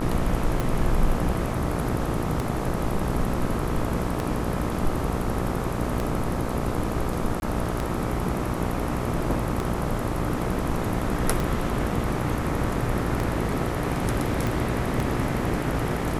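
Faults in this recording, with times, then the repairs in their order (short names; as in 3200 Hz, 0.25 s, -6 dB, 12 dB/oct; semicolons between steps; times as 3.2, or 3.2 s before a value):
buzz 60 Hz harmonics 22 -30 dBFS
tick 33 1/3 rpm
7.4–7.42 gap 21 ms
14.47 pop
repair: de-click; de-hum 60 Hz, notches 22; interpolate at 7.4, 21 ms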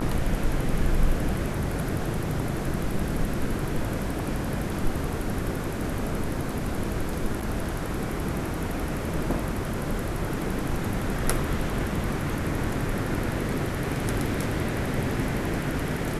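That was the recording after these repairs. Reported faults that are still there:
none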